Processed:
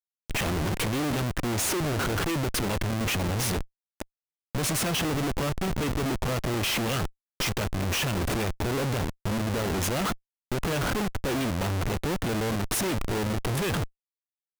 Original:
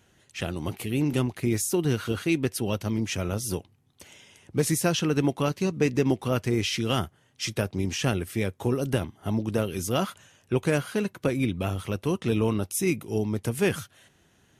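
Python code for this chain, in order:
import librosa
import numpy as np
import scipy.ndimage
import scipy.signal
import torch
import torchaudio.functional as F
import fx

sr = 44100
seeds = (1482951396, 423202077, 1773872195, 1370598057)

y = fx.dynamic_eq(x, sr, hz=2400.0, q=1.2, threshold_db=-44.0, ratio=4.0, max_db=4)
y = fx.rider(y, sr, range_db=10, speed_s=2.0)
y = fx.schmitt(y, sr, flips_db=-34.5)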